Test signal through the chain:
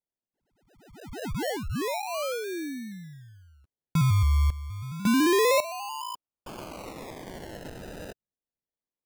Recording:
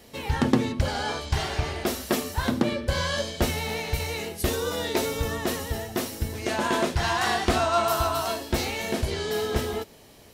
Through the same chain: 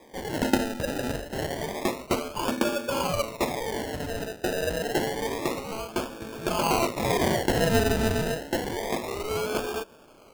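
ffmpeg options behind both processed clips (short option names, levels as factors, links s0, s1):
-af "highpass=390,equalizer=f=420:t=q:w=4:g=-4,equalizer=f=760:t=q:w=4:g=-7,equalizer=f=1500:t=q:w=4:g=-7,lowpass=f=2300:w=0.5412,lowpass=f=2300:w=1.3066,acrusher=samples=31:mix=1:aa=0.000001:lfo=1:lforange=18.6:lforate=0.28,volume=1.88"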